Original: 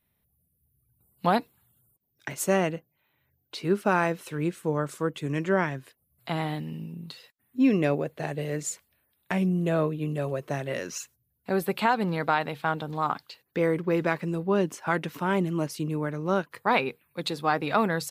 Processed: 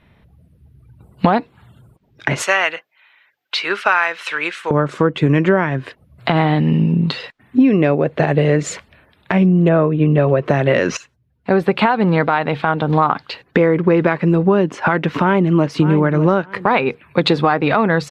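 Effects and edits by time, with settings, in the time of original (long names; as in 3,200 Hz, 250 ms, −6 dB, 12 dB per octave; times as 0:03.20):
0:02.42–0:04.71: high-pass filter 1,500 Hz
0:09.68–0:10.44: low-pass filter 2,400 Hz → 4,400 Hz
0:10.97–0:13.94: fade in, from −16 dB
0:14.99–0:15.74: delay throw 600 ms, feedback 20%, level −15.5 dB
whole clip: low-pass filter 2,800 Hz 12 dB per octave; downward compressor 10 to 1, threshold −35 dBFS; boost into a limiter +26 dB; level −1 dB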